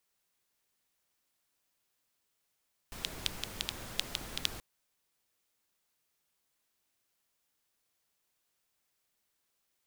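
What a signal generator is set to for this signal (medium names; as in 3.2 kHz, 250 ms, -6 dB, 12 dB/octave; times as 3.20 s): rain from filtered ticks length 1.68 s, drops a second 5.5, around 3.4 kHz, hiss -3 dB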